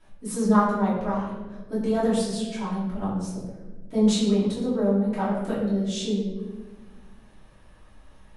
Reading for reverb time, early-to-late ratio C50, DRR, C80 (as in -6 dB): 1.3 s, 1.5 dB, -11.5 dB, 4.0 dB